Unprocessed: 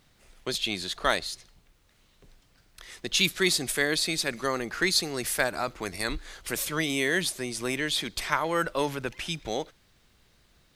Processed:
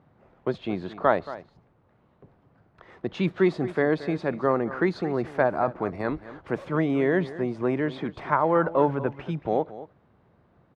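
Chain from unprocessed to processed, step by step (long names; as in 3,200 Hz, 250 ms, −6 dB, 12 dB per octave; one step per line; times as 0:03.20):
Chebyshev band-pass filter 110–940 Hz, order 2
on a send: single-tap delay 226 ms −15.5 dB
on the sum: level +7.5 dB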